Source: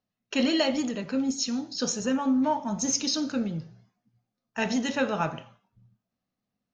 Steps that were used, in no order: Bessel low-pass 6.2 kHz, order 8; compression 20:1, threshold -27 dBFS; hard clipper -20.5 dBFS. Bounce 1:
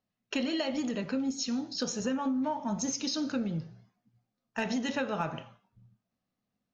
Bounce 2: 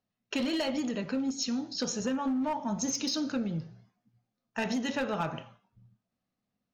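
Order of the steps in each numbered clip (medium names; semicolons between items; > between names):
compression > Bessel low-pass > hard clipper; Bessel low-pass > hard clipper > compression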